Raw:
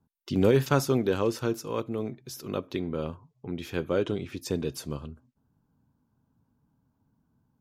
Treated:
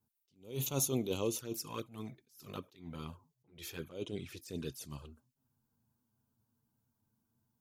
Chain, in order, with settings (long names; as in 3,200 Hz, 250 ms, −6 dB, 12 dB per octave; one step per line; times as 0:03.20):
first-order pre-emphasis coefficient 0.8
flanger swept by the level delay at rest 9.2 ms, full sweep at −36.5 dBFS
level that may rise only so fast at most 150 dB per second
level +6.5 dB